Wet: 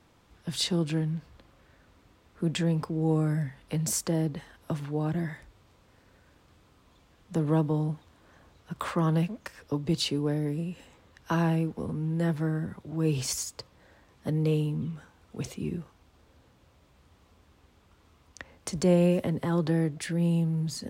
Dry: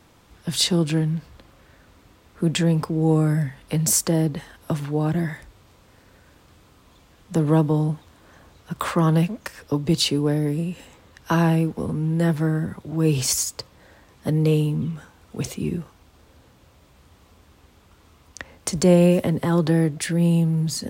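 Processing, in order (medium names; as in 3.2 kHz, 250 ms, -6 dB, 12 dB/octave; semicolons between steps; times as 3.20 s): treble shelf 8 kHz -6.5 dB; trim -7 dB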